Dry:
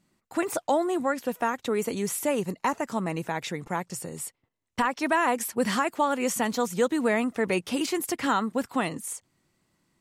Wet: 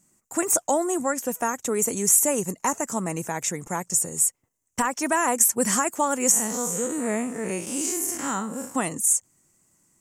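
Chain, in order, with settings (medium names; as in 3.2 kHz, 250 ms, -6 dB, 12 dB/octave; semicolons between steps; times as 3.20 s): 6.31–8.75 s: spectral blur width 127 ms; resonant high shelf 5.3 kHz +10 dB, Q 3; trim +1 dB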